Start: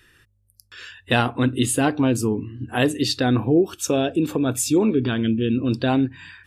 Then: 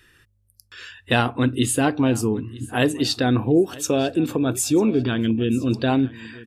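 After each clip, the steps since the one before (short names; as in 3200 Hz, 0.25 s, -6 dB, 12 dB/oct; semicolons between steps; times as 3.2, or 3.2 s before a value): feedback echo 0.946 s, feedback 29%, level -20 dB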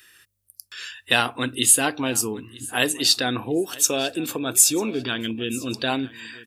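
tilt +3.5 dB/oct; gain -1 dB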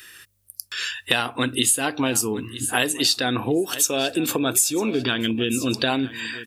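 compressor 4:1, threshold -27 dBFS, peak gain reduction 14 dB; gain +8 dB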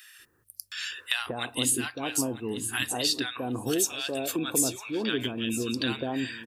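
bands offset in time highs, lows 0.19 s, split 1000 Hz; gain -6.5 dB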